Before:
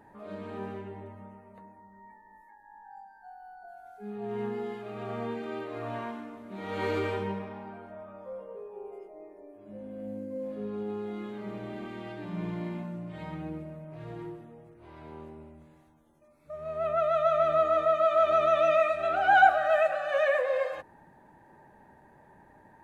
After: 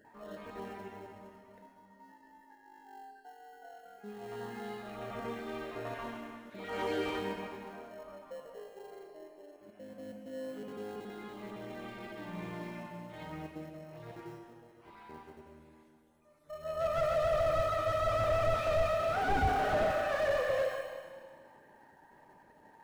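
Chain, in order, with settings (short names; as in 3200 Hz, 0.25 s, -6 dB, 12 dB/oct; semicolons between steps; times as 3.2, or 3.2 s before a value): random spectral dropouts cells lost 21%; low shelf 280 Hz -11.5 dB; in parallel at -12 dB: sample-rate reducer 1200 Hz, jitter 0%; on the sum: Schroeder reverb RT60 1.7 s, combs from 26 ms, DRR 3.5 dB; slew limiter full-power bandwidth 38 Hz; gain -1.5 dB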